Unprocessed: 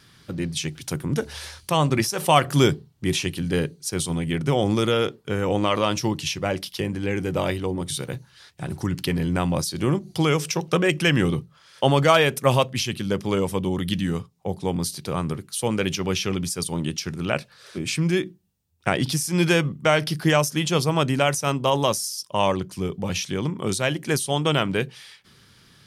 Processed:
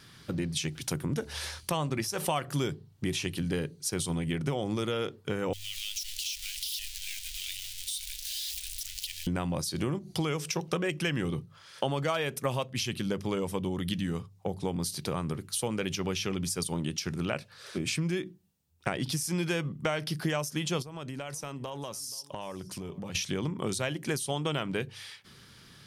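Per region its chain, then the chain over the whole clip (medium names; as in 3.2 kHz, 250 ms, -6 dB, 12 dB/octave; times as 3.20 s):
5.53–9.27 s: jump at every zero crossing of -22.5 dBFS + inverse Chebyshev band-stop 130–1000 Hz, stop band 60 dB + compression 5:1, threshold -31 dBFS
20.82–23.15 s: compression 8:1, threshold -35 dBFS + delay 479 ms -21 dB
whole clip: de-hum 49.53 Hz, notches 2; compression 4:1, threshold -29 dBFS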